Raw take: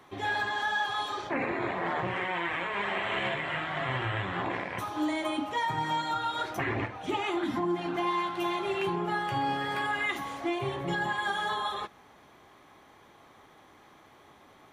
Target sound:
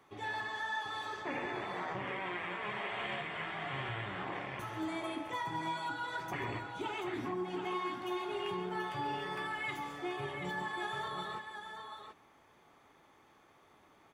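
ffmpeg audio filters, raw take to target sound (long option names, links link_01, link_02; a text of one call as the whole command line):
ffmpeg -i in.wav -af "asetrate=45938,aresample=44100,bandreject=frequency=4000:width=9.9,aecho=1:1:137|734:0.237|0.447,volume=-8.5dB" out.wav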